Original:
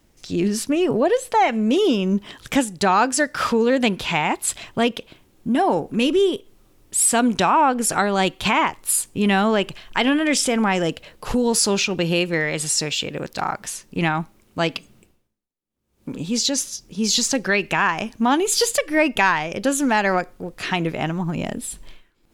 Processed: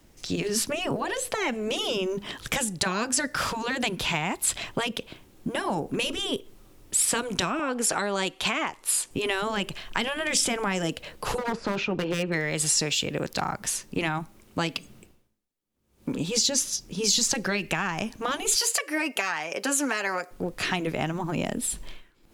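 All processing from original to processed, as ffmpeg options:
ffmpeg -i in.wav -filter_complex "[0:a]asettb=1/sr,asplit=3[link_01][link_02][link_03];[link_01]atrim=end=7.594[link_04];[link_02]atrim=start=7.59:end=9.11,asetpts=PTS-STARTPTS,afade=type=in:duration=0.004:curve=qsin,afade=type=out:start_time=1.516:duration=0.004:curve=qsin,lowpass=11000,bass=frequency=250:gain=-14,treble=frequency=4000:gain=-1[link_05];[link_03]atrim=start=9.106[link_06];[link_04][link_05]acrossfade=duration=0.004:curve1=hsin:curve2=qsin[link_07];[link_07][link_06]acrossfade=duration=0.004:curve1=qsin:curve2=hsin,asettb=1/sr,asplit=3[link_08][link_09][link_10];[link_08]atrim=end=11.384[link_11];[link_09]atrim=start=11.38:end=12.32,asetpts=PTS-STARTPTS,afade=type=in:duration=0.004:curve=qsin,afade=type=out:start_time=0.936:duration=0.004:curve=qsin,deesser=0.4,lowpass=1900,aeval=exprs='0.178*(abs(mod(val(0)/0.178+3,4)-2)-1)':channel_layout=same[link_12];[link_10]atrim=start=12.316[link_13];[link_11][link_12]acrossfade=duration=0.004:curve1=hsin:curve2=qsin[link_14];[link_14][link_13]acrossfade=duration=0.004:curve1=qsin:curve2=hsin,asettb=1/sr,asplit=3[link_15][link_16][link_17];[link_15]atrim=end=18.554[link_18];[link_16]atrim=start=18.55:end=20.31,asetpts=PTS-STARTPTS,afade=type=in:duration=0.004:curve=qsin,afade=type=out:start_time=1.756:duration=0.004:curve=qsin,highpass=500,equalizer=frequency=3500:width_type=o:width=0.22:gain=-8.5,aecho=1:1:7.1:0.32,atrim=end_sample=77616[link_19];[link_17]atrim=start=20.306[link_20];[link_18][link_19]acrossfade=duration=0.004:curve1=hsin:curve2=qsin[link_21];[link_21][link_20]acrossfade=duration=0.004:curve1=qsin:curve2=hsin,afftfilt=real='re*lt(hypot(re,im),0.708)':imag='im*lt(hypot(re,im),0.708)':win_size=1024:overlap=0.75,acrossover=split=240|5700[link_22][link_23][link_24];[link_22]acompressor=threshold=-36dB:ratio=4[link_25];[link_23]acompressor=threshold=-29dB:ratio=4[link_26];[link_24]acompressor=threshold=-27dB:ratio=4[link_27];[link_25][link_26][link_27]amix=inputs=3:normalize=0,volume=2.5dB" out.wav

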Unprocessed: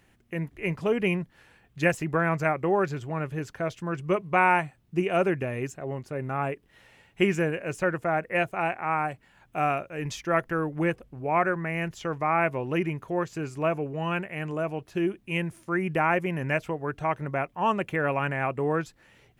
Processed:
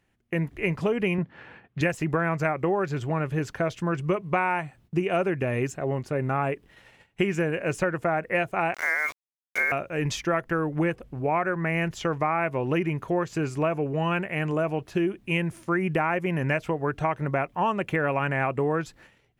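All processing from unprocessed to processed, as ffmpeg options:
ffmpeg -i in.wav -filter_complex "[0:a]asettb=1/sr,asplit=3[link_01][link_02][link_03];[link_01]atrim=end=1.184[link_04];[link_02]atrim=start=1.18:end=1.81,asetpts=PTS-STARTPTS,afade=type=in:duration=0.004:curve=qsin,afade=type=out:start_time=0.626:duration=0.004:curve=qsin,acontrast=24,highpass=110,lowpass=2500[link_05];[link_03]atrim=start=1.806[link_06];[link_04][link_05]acrossfade=duration=0.004:curve1=hsin:curve2=qsin[link_07];[link_07][link_06]acrossfade=duration=0.004:curve1=qsin:curve2=hsin,asettb=1/sr,asplit=3[link_08][link_09][link_10];[link_08]atrim=end=8.744[link_11];[link_09]atrim=start=8.74:end=9.72,asetpts=PTS-STARTPTS,afade=type=in:duration=0.004:curve=qsin,afade=type=out:start_time=0.976:duration=0.004:curve=qsin,highpass=frequency=630:width=0.5412,highpass=frequency=630:width=1.3066,lowpass=frequency=2500:width_type=q:width=0.5098,lowpass=frequency=2500:width_type=q:width=0.6013,lowpass=frequency=2500:width_type=q:width=0.9,lowpass=frequency=2500:width_type=q:width=2.563,afreqshift=-2900,aeval=exprs='val(0)*gte(abs(val(0)),0.0126)':channel_layout=same[link_12];[link_10]atrim=start=9.716[link_13];[link_11][link_12]acrossfade=duration=0.004:curve1=hsin:curve2=qsin[link_14];[link_14][link_13]acrossfade=duration=0.004:curve1=qsin:curve2=hsin,agate=range=-15dB:threshold=-55dB:ratio=16:detection=peak,highshelf=frequency=8200:gain=-4.5,acompressor=threshold=-28dB:ratio=6,volume=6.5dB" out.wav

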